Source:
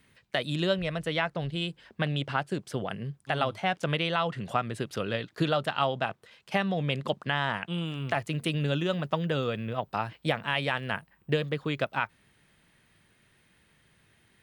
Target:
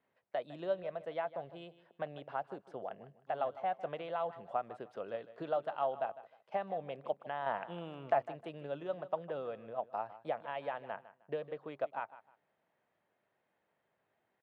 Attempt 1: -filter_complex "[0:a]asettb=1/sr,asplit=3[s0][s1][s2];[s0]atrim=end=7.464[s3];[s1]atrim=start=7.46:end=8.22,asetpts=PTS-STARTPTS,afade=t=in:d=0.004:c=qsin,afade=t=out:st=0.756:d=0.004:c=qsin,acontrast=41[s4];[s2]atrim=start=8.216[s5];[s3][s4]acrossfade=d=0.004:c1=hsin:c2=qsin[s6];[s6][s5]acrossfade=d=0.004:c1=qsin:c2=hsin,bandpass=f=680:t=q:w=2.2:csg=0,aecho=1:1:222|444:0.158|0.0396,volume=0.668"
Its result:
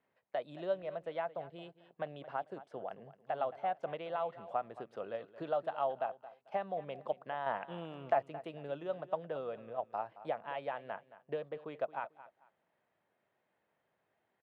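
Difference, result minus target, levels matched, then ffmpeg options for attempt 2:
echo 68 ms late
-filter_complex "[0:a]asettb=1/sr,asplit=3[s0][s1][s2];[s0]atrim=end=7.464[s3];[s1]atrim=start=7.46:end=8.22,asetpts=PTS-STARTPTS,afade=t=in:d=0.004:c=qsin,afade=t=out:st=0.756:d=0.004:c=qsin,acontrast=41[s4];[s2]atrim=start=8.216[s5];[s3][s4]acrossfade=d=0.004:c1=hsin:c2=qsin[s6];[s6][s5]acrossfade=d=0.004:c1=qsin:c2=hsin,bandpass=f=680:t=q:w=2.2:csg=0,aecho=1:1:154|308:0.158|0.0396,volume=0.668"

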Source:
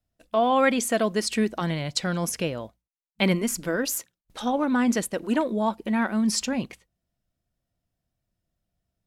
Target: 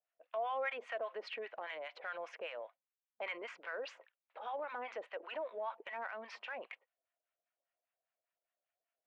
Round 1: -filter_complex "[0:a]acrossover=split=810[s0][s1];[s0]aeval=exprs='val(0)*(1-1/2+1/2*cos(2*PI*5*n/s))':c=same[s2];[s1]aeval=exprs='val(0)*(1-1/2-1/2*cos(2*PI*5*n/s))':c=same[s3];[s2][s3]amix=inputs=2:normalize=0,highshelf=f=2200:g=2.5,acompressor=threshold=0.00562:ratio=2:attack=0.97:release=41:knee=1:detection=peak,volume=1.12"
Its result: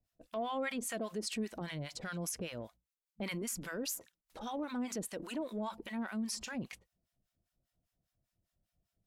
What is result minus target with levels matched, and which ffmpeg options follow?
1 kHz band -5.0 dB
-filter_complex "[0:a]acrossover=split=810[s0][s1];[s0]aeval=exprs='val(0)*(1-1/2+1/2*cos(2*PI*5*n/s))':c=same[s2];[s1]aeval=exprs='val(0)*(1-1/2-1/2*cos(2*PI*5*n/s))':c=same[s3];[s2][s3]amix=inputs=2:normalize=0,asuperpass=centerf=1200:order=8:qfactor=0.53,highshelf=f=2200:g=2.5,acompressor=threshold=0.00562:ratio=2:attack=0.97:release=41:knee=1:detection=peak,volume=1.12"

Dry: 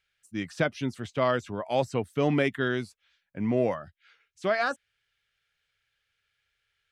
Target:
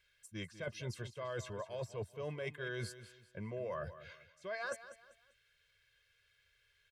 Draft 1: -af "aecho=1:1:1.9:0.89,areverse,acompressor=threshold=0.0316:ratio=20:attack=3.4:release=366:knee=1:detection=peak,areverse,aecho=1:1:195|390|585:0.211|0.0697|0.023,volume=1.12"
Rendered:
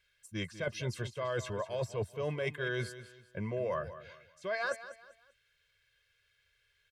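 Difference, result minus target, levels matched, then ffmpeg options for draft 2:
compression: peak gain reduction -6.5 dB
-af "aecho=1:1:1.9:0.89,areverse,acompressor=threshold=0.0141:ratio=20:attack=3.4:release=366:knee=1:detection=peak,areverse,aecho=1:1:195|390|585:0.211|0.0697|0.023,volume=1.12"

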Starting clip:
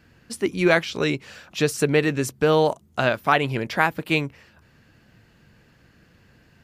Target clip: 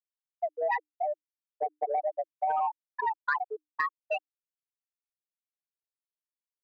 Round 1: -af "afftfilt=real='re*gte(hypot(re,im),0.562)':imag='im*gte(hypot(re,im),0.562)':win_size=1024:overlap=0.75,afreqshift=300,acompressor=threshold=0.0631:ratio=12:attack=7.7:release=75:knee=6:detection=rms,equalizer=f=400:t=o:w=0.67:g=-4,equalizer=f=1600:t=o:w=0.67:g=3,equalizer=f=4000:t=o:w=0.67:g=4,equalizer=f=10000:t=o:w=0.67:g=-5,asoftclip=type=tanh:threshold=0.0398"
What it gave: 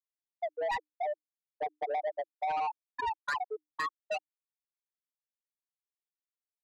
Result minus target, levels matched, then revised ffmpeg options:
saturation: distortion +14 dB
-af "afftfilt=real='re*gte(hypot(re,im),0.562)':imag='im*gte(hypot(re,im),0.562)':win_size=1024:overlap=0.75,afreqshift=300,acompressor=threshold=0.0631:ratio=12:attack=7.7:release=75:knee=6:detection=rms,equalizer=f=400:t=o:w=0.67:g=-4,equalizer=f=1600:t=o:w=0.67:g=3,equalizer=f=4000:t=o:w=0.67:g=4,equalizer=f=10000:t=o:w=0.67:g=-5,asoftclip=type=tanh:threshold=0.141"

